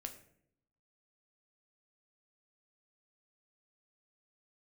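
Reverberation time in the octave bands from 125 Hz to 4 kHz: 1.0 s, 0.95 s, 0.80 s, 0.55 s, 0.55 s, 0.40 s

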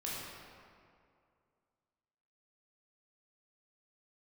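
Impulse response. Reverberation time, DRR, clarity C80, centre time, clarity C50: 2.3 s, -7.0 dB, -0.5 dB, 136 ms, -2.5 dB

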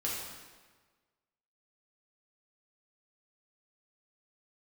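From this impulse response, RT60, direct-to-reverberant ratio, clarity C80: 1.4 s, -6.0 dB, 2.5 dB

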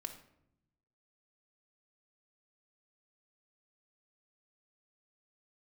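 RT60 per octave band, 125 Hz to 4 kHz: 1.4 s, 1.2 s, 0.85 s, 0.70 s, 0.60 s, 0.45 s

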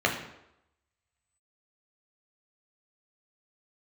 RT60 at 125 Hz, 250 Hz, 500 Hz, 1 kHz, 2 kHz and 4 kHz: 0.70 s, 0.75 s, 0.85 s, 0.85 s, 0.75 s, 0.65 s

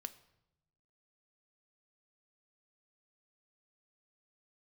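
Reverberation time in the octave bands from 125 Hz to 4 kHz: 1.3 s, 1.2 s, 0.90 s, 0.80 s, 0.70 s, 0.65 s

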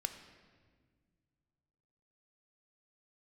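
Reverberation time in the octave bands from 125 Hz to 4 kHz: 2.9 s, 2.5 s, 2.0 s, 1.5 s, 1.4 s, 1.2 s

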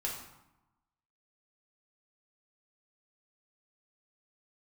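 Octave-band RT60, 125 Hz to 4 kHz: 1.2 s, 1.1 s, 0.85 s, 1.1 s, 0.75 s, 0.60 s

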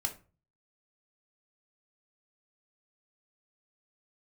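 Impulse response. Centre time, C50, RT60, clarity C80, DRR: 9 ms, 13.5 dB, 0.35 s, 19.5 dB, 4.0 dB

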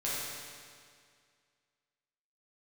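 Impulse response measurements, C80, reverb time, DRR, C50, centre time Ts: -1.0 dB, 2.1 s, -9.0 dB, -3.5 dB, 142 ms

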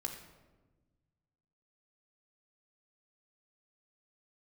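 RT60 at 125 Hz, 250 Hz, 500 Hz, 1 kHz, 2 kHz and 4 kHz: 2.2 s, 1.8 s, 1.4 s, 1.1 s, 0.90 s, 0.70 s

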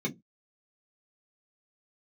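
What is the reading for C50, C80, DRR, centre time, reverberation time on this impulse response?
23.5 dB, 31.0 dB, -2.0 dB, 10 ms, 0.15 s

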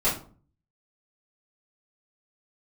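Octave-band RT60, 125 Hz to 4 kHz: 0.70 s, 0.55 s, 0.45 s, 0.40 s, 0.30 s, 0.25 s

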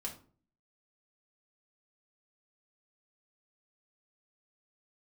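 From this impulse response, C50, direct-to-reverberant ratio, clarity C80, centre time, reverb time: 10.5 dB, -1.5 dB, 16.0 dB, 17 ms, 0.45 s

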